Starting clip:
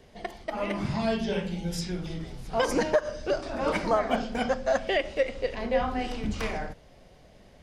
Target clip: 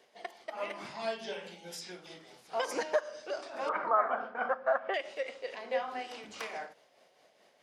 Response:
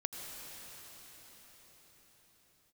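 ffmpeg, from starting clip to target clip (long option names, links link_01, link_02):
-filter_complex "[0:a]highpass=520,tremolo=f=4.7:d=0.42,asettb=1/sr,asplit=3[link_01][link_02][link_03];[link_01]atrim=end=3.694[link_04];[link_02]atrim=start=3.69:end=4.94,asetpts=PTS-STARTPTS,afade=type=in:duration=0.004:curve=qsin,afade=type=out:start_time=1.246:duration=0.004:curve=qsin,lowpass=frequency=1300:width_type=q:width=3.8[link_05];[link_03]atrim=start=4.936[link_06];[link_04][link_05]acrossfade=duration=0.004:curve1=hsin:curve2=qsin[link_07];[link_07][link_06]acrossfade=duration=0.004:curve1=qsin:curve2=hsin,volume=-3.5dB"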